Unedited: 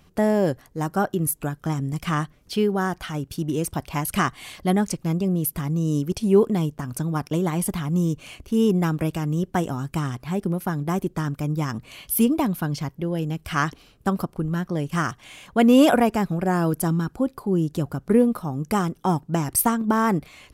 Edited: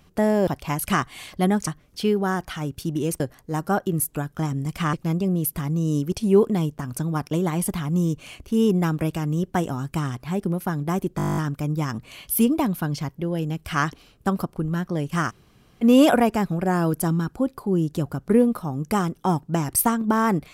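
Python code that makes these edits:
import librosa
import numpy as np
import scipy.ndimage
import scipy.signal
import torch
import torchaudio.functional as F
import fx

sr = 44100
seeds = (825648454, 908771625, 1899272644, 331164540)

y = fx.edit(x, sr, fx.swap(start_s=0.47, length_s=1.73, other_s=3.73, other_length_s=1.2),
    fx.stutter(start_s=11.17, slice_s=0.02, count=11),
    fx.room_tone_fill(start_s=15.1, length_s=0.53, crossfade_s=0.04), tone=tone)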